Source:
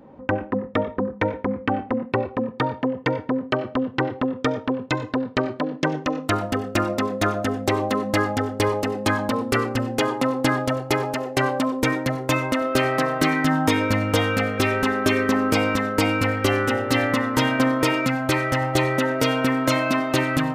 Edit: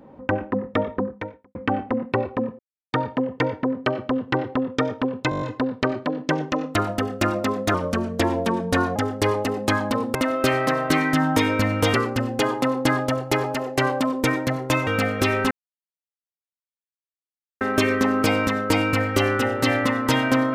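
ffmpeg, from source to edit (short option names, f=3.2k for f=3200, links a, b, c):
-filter_complex "[0:a]asplit=15[a][b][c][d][e][f][g][h][i][j][k][l][m][n][o];[a]atrim=end=1.55,asetpts=PTS-STARTPTS,afade=t=out:st=1:d=0.55:c=qua[p];[b]atrim=start=1.55:end=2.59,asetpts=PTS-STARTPTS,afade=t=in:d=0.004:c=hsin,afade=t=out:st=1.036:d=0.004:c=hsin,apad=pad_dur=0.34[q];[c]atrim=start=2.59:end=4.982,asetpts=PTS-STARTPTS,afade=t=in:d=0.004:c=hsin[r];[d]atrim=start=4.958:end=4.982[s];[e]atrim=start=4.958:end=4.982[t];[f]atrim=start=4.958:end=4.982[u];[g]atrim=start=4.958:end=4.982[v];[h]atrim=start=4.958:end=4.982[w];[i]atrim=start=4.958:end=7.284[x];[j]atrim=start=7.28:end=8.34,asetpts=PTS-STARTPTS,asetrate=38367,aresample=44100,atrim=end_sample=53731,asetpts=PTS-STARTPTS[y];[k]atrim=start=8.336:end=9.532[z];[l]atrim=start=12.458:end=14.252[aa];[m]atrim=start=9.528:end=12.462[ab];[n]atrim=start=14.248:end=14.89,asetpts=PTS-STARTPTS,afade=t=out:st=0.638:d=0.004:c=hsin,apad=pad_dur=2.1[ac];[o]atrim=start=14.89,asetpts=PTS-STARTPTS,afade=t=in:d=0.004:c=hsin[ad];[p][q][r]concat=n=3:v=0:a=1[ae];[ae][s]acrossfade=d=0.004:c1=hsin:c2=hsin[af];[af][t]acrossfade=d=0.004:c1=hsin:c2=hsin[ag];[ag][u]acrossfade=d=0.004:c1=hsin:c2=hsin[ah];[ah][v]acrossfade=d=0.004:c1=hsin:c2=hsin[ai];[ai][w]acrossfade=d=0.004:c1=hsin:c2=hsin[aj];[aj][x]acrossfade=d=0.004:c1=hsin:c2=hsin[ak];[ak][y]acrossfade=d=0.004:c1=hsin:c2=hsin[al];[al][z]acrossfade=d=0.004:c1=hsin:c2=hsin[am];[am][aa]acrossfade=d=0.004:c1=hsin:c2=hsin[an];[an][ab]acrossfade=d=0.004:c1=hsin:c2=hsin[ao];[ac][ad]concat=n=2:v=0:a=1[ap];[ao][ap]acrossfade=d=0.004:c1=hsin:c2=hsin"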